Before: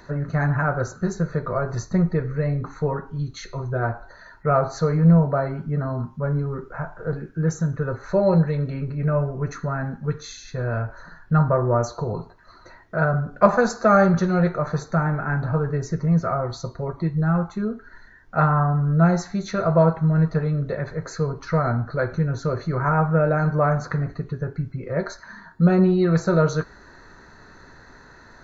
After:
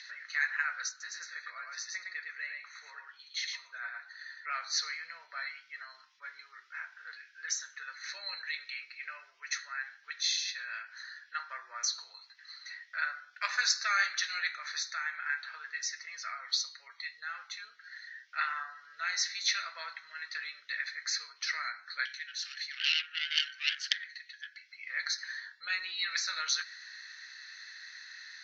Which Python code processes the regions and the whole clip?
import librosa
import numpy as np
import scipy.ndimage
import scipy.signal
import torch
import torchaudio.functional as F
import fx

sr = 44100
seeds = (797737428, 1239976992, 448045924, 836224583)

y = fx.chain(x, sr, fx.high_shelf(hz=2300.0, db=-9.0),
    fx.echo_single(ms=110, db=-3.5), at=(0.89, 4.46))
y = fx.chain(y, sr, fx.ellip_highpass(hz=1600.0, order=4, stop_db=80),
    fx.high_shelf(hz=5200.0, db=-3.0),
    fx.doppler_dist(depth_ms=0.28), at=(22.05, 24.69))
y = scipy.signal.sosfilt(scipy.signal.cheby1(3, 1.0, [1900.0, 5800.0], 'bandpass', fs=sr, output='sos'), y)
y = fx.peak_eq(y, sr, hz=4300.0, db=4.5, octaves=1.4)
y = y * 10.0 ** (6.5 / 20.0)